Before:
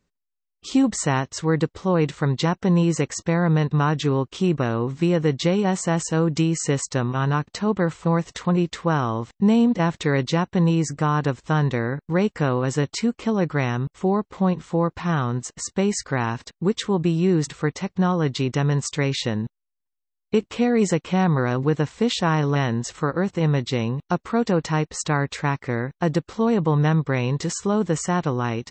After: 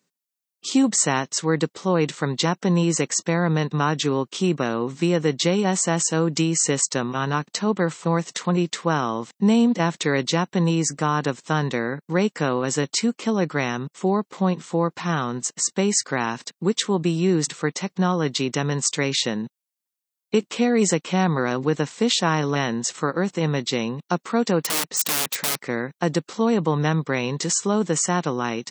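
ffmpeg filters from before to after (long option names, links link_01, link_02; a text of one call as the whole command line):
ffmpeg -i in.wav -filter_complex "[0:a]asettb=1/sr,asplit=3[link_01][link_02][link_03];[link_01]atrim=end=24.604[link_04];[link_02]atrim=start=24.6:end=25.6,asetpts=PTS-STARTPTS,afade=type=in:duration=0.004:curve=qsin,afade=type=out:start_time=0.996:duration=0.004:curve=qsin,aeval=exprs='(mod(14.1*val(0)+1,2)-1)/14.1':channel_layout=same[link_05];[link_03]atrim=start=25.596[link_06];[link_04][link_05]acrossfade=duration=0.004:curve1=hsin:curve2=qsin[link_07];[link_07][link_06]acrossfade=duration=0.004:curve1=qsin:curve2=hsin,highpass=frequency=160:width=0.5412,highpass=frequency=160:width=1.3066,highshelf=frequency=4100:gain=10.5" out.wav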